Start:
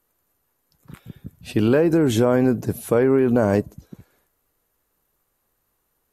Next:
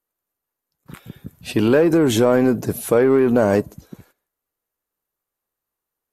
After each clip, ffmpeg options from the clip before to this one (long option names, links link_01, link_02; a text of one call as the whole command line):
ffmpeg -i in.wav -filter_complex "[0:a]agate=range=-18dB:threshold=-53dB:ratio=16:detection=peak,lowshelf=frequency=190:gain=-7.5,asplit=2[link_01][link_02];[link_02]asoftclip=type=tanh:threshold=-25dB,volume=-5.5dB[link_03];[link_01][link_03]amix=inputs=2:normalize=0,volume=2.5dB" out.wav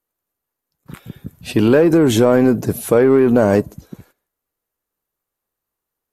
ffmpeg -i in.wav -af "lowshelf=frequency=360:gain=3,volume=1.5dB" out.wav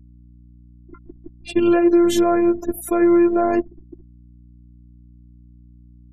ffmpeg -i in.wav -af "afftfilt=real='re*gte(hypot(re,im),0.0316)':imag='im*gte(hypot(re,im),0.0316)':win_size=1024:overlap=0.75,afftfilt=real='hypot(re,im)*cos(PI*b)':imag='0':win_size=512:overlap=0.75,aeval=exprs='val(0)+0.00562*(sin(2*PI*60*n/s)+sin(2*PI*2*60*n/s)/2+sin(2*PI*3*60*n/s)/3+sin(2*PI*4*60*n/s)/4+sin(2*PI*5*60*n/s)/5)':channel_layout=same" out.wav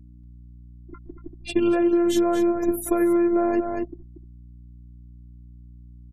ffmpeg -i in.wav -af "aecho=1:1:235:0.355,acompressor=threshold=-17dB:ratio=6" out.wav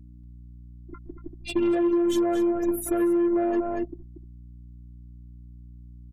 ffmpeg -i in.wav -af "asoftclip=type=tanh:threshold=-17dB" out.wav